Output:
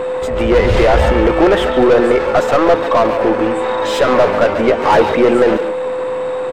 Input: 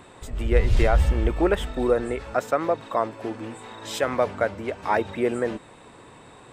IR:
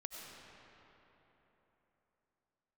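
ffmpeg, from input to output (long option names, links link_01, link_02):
-filter_complex "[0:a]asplit=2[link_01][link_02];[link_02]highpass=frequency=720:poles=1,volume=27dB,asoftclip=type=tanh:threshold=-7dB[link_03];[link_01][link_03]amix=inputs=2:normalize=0,lowpass=frequency=1000:poles=1,volume=-6dB,aeval=exprs='val(0)+0.0891*sin(2*PI*510*n/s)':channel_layout=same,asettb=1/sr,asplit=3[link_04][link_05][link_06];[link_04]atrim=end=4.494[link_07];[link_05]atrim=start=4.49:end=5.14,asetpts=PTS-STARTPTS,afade=type=in:duration=0.004:curve=qsin,afade=type=out:start_time=0.646:duration=0.004:curve=qsin,asplit=2[link_08][link_09];[link_09]adelay=13,volume=-4dB[link_10];[link_08][link_10]amix=inputs=2:normalize=0,atrim=end_sample=28665[link_11];[link_06]atrim=start=5.136[link_12];[link_07][link_11]acrossfade=duration=0.004:curve1=hsin:curve2=qsin[link_13];[link_13][link_12]acrossfade=duration=0.004:curve1=qsin:curve2=hsin,aeval=exprs='0.531*(cos(1*acos(clip(val(0)/0.531,-1,1)))-cos(1*PI/2))+0.0266*(cos(4*acos(clip(val(0)/0.531,-1,1)))-cos(4*PI/2))+0.0596*(cos(5*acos(clip(val(0)/0.531,-1,1)))-cos(5*PI/2))+0.0473*(cos(7*acos(clip(val(0)/0.531,-1,1)))-cos(7*PI/2))+0.00299*(cos(8*acos(clip(val(0)/0.531,-1,1)))-cos(8*PI/2))':channel_layout=same,asplit=2[link_14][link_15];[link_15]adelay=140,highpass=300,lowpass=3400,asoftclip=type=hard:threshold=-14.5dB,volume=-7dB[link_16];[link_14][link_16]amix=inputs=2:normalize=0,volume=4dB"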